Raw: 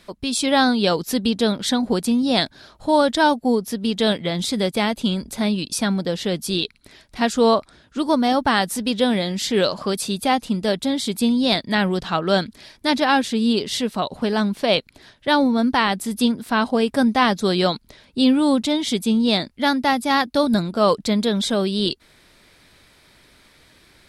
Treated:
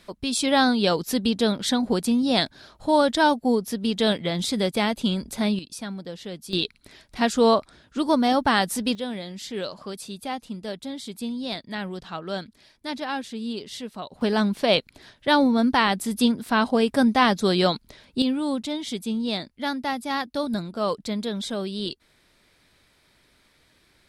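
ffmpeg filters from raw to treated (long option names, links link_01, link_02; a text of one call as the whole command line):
ffmpeg -i in.wav -af "asetnsamples=nb_out_samples=441:pad=0,asendcmd='5.59 volume volume -12.5dB;6.53 volume volume -2dB;8.95 volume volume -12dB;14.21 volume volume -1.5dB;18.22 volume volume -8.5dB',volume=-2.5dB" out.wav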